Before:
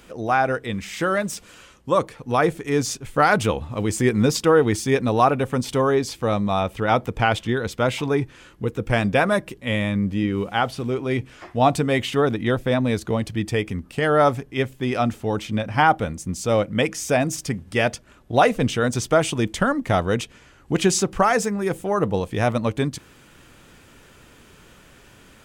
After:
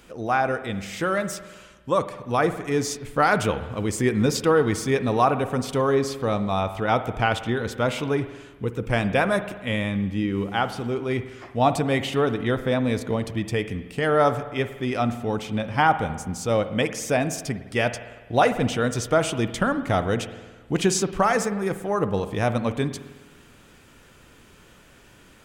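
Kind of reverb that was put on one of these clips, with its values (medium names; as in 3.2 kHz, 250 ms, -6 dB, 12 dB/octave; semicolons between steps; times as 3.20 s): spring tank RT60 1.3 s, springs 51 ms, chirp 70 ms, DRR 11 dB; trim -2.5 dB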